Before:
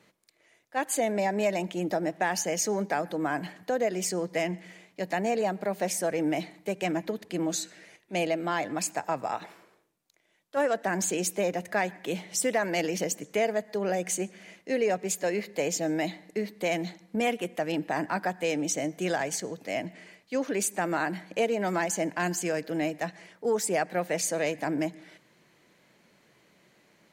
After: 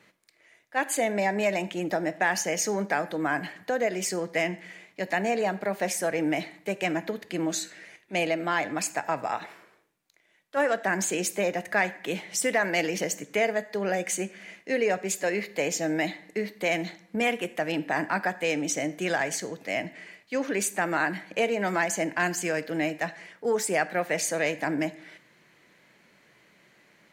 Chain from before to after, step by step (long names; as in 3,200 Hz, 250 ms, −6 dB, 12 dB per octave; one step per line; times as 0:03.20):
parametric band 1,900 Hz +6 dB 1.3 octaves
on a send: convolution reverb, pre-delay 5 ms, DRR 15 dB